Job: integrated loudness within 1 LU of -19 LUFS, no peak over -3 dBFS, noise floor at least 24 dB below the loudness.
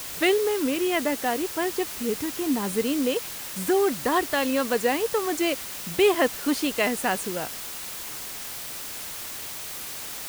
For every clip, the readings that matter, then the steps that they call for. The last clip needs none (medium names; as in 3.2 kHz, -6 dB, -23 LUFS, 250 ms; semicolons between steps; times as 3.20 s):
noise floor -36 dBFS; noise floor target -50 dBFS; loudness -26.0 LUFS; peak level -9.5 dBFS; loudness target -19.0 LUFS
-> noise reduction 14 dB, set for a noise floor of -36 dBFS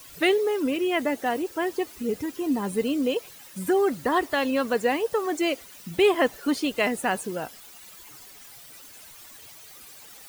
noise floor -47 dBFS; noise floor target -50 dBFS
-> noise reduction 6 dB, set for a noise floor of -47 dBFS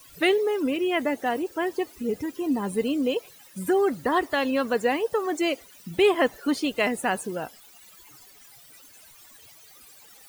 noise floor -52 dBFS; loudness -25.5 LUFS; peak level -10.0 dBFS; loudness target -19.0 LUFS
-> trim +6.5 dB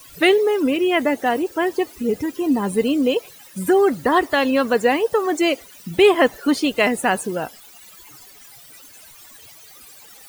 loudness -19.0 LUFS; peak level -3.5 dBFS; noise floor -45 dBFS